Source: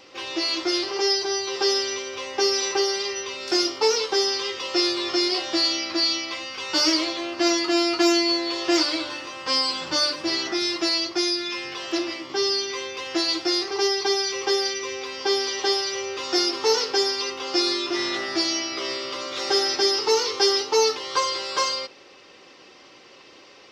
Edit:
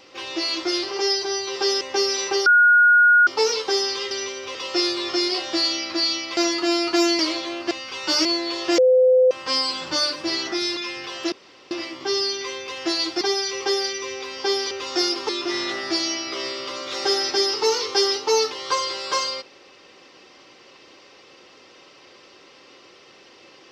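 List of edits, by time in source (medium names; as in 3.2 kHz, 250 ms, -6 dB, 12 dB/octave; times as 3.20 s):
1.81–2.25 s: move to 4.55 s
2.90–3.71 s: bleep 1.44 kHz -10.5 dBFS
6.37–6.91 s: swap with 7.43–8.25 s
8.78–9.31 s: bleep 511 Hz -11.5 dBFS
10.77–11.45 s: delete
12.00 s: insert room tone 0.39 s
13.50–14.02 s: delete
15.52–16.08 s: delete
16.66–17.74 s: delete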